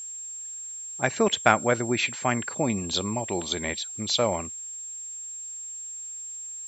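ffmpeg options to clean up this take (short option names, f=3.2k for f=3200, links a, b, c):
-af "bandreject=f=7.5k:w=30,agate=range=-21dB:threshold=-30dB"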